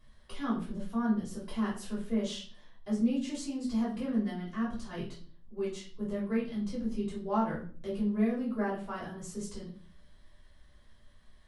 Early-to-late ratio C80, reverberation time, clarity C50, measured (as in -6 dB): 11.5 dB, 0.45 s, 6.5 dB